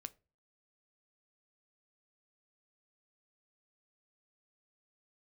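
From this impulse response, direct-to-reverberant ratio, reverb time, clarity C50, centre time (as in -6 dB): 12.5 dB, not exponential, 23.0 dB, 2 ms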